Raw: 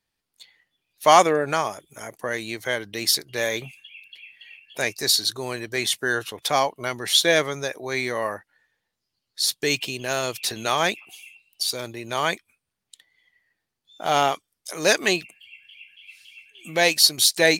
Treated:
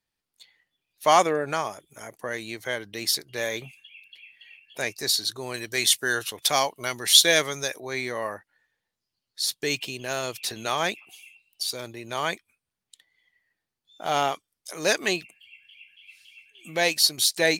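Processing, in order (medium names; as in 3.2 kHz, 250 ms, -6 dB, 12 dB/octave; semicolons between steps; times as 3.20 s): 5.54–7.80 s: treble shelf 2.7 kHz +10.5 dB; trim -4 dB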